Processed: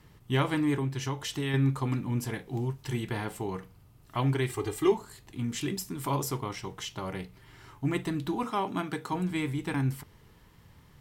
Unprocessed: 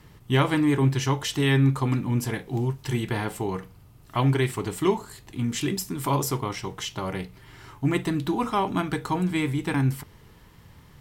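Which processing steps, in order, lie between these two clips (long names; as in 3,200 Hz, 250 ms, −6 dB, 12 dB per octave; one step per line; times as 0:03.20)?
0:00.76–0:01.54: downward compressor 2.5 to 1, threshold −24 dBFS, peak gain reduction 5.5 dB
0:04.49–0:04.92: comb filter 2.5 ms, depth 80%
0:08.43–0:09.13: high-pass filter 150 Hz 12 dB per octave
level −5.5 dB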